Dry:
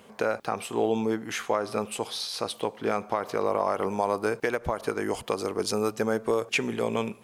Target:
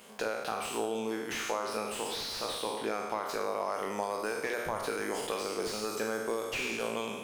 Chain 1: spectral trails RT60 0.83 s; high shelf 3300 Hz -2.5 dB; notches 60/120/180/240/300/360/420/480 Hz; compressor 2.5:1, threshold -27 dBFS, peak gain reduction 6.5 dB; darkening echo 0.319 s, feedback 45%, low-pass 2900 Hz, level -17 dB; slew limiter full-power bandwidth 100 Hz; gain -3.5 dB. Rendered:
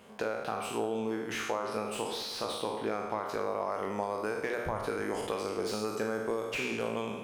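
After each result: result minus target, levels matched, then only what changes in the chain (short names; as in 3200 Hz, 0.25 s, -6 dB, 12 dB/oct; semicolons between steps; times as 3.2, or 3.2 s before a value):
125 Hz band +5.5 dB; 8000 Hz band -4.5 dB
add after compressor: bell 60 Hz -12.5 dB 1.9 oct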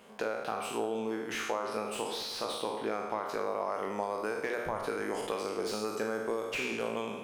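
8000 Hz band -4.0 dB
change: high shelf 3300 Hz +9.5 dB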